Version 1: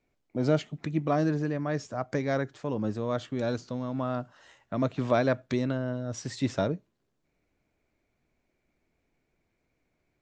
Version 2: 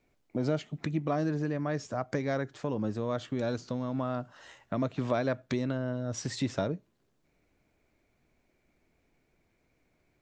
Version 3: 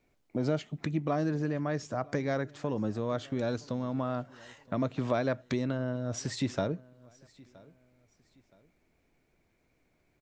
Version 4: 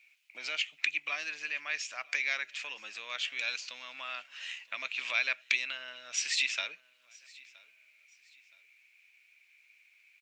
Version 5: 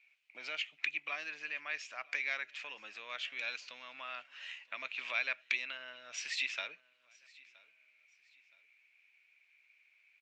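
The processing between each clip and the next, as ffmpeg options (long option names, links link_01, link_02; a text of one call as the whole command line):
ffmpeg -i in.wav -af "acompressor=threshold=-36dB:ratio=2,volume=4dB" out.wav
ffmpeg -i in.wav -af "aecho=1:1:970|1940:0.0631|0.0215" out.wav
ffmpeg -i in.wav -af "highpass=frequency=2500:width_type=q:width=6.5,volume=6dB" out.wav
ffmpeg -i in.wav -af "aemphasis=mode=reproduction:type=75fm,volume=-2dB" out.wav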